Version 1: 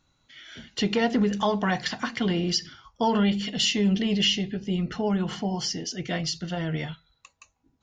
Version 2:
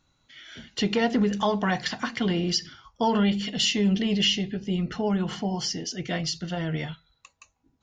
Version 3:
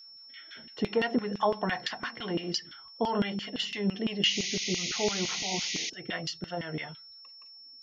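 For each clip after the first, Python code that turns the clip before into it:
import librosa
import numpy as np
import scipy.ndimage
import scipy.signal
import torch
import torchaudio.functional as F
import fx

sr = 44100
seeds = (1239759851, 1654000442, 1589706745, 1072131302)

y1 = x
y2 = fx.filter_lfo_bandpass(y1, sr, shape='saw_down', hz=5.9, low_hz=280.0, high_hz=3100.0, q=0.99)
y2 = y2 + 10.0 ** (-48.0 / 20.0) * np.sin(2.0 * np.pi * 5400.0 * np.arange(len(y2)) / sr)
y2 = fx.spec_paint(y2, sr, seeds[0], shape='noise', start_s=4.25, length_s=1.65, low_hz=1900.0, high_hz=6800.0, level_db=-34.0)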